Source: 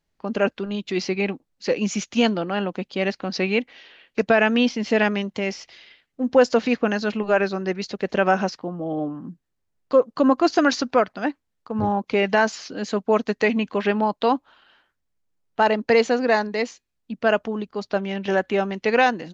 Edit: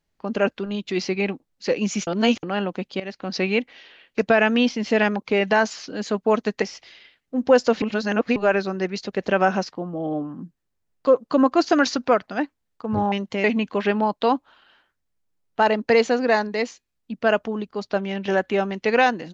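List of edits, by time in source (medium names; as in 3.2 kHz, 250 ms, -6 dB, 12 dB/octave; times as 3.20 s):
2.07–2.43 s: reverse
3.00–3.34 s: fade in, from -16.5 dB
5.16–5.48 s: swap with 11.98–13.44 s
6.68–7.22 s: reverse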